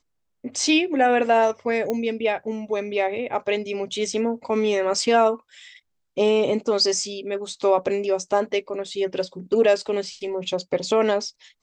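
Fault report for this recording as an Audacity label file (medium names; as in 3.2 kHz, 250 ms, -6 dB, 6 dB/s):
1.900000	1.900000	pop -13 dBFS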